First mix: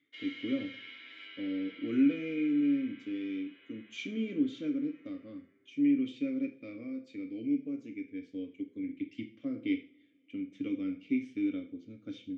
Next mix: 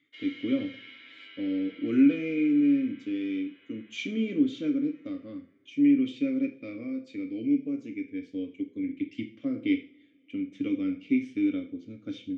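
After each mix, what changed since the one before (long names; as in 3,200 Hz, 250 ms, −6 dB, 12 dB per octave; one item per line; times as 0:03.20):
speech +5.5 dB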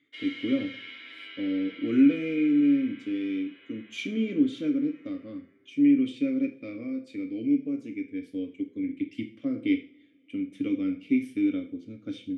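background +5.0 dB
master: remove Chebyshev low-pass filter 7,000 Hz, order 4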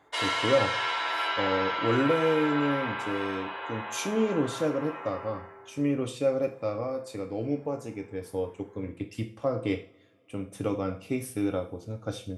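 speech −11.0 dB
master: remove formant filter i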